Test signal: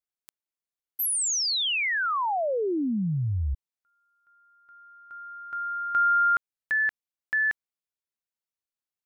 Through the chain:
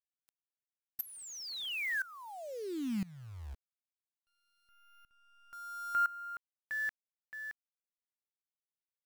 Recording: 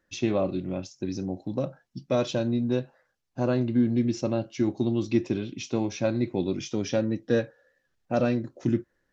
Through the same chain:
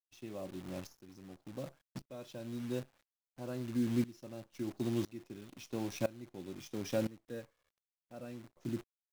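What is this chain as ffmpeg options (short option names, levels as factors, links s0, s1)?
-af "acrusher=bits=7:dc=4:mix=0:aa=0.000001,aeval=exprs='val(0)*pow(10,-20*if(lt(mod(-0.99*n/s,1),2*abs(-0.99)/1000),1-mod(-0.99*n/s,1)/(2*abs(-0.99)/1000),(mod(-0.99*n/s,1)-2*abs(-0.99)/1000)/(1-2*abs(-0.99)/1000))/20)':c=same,volume=0.501"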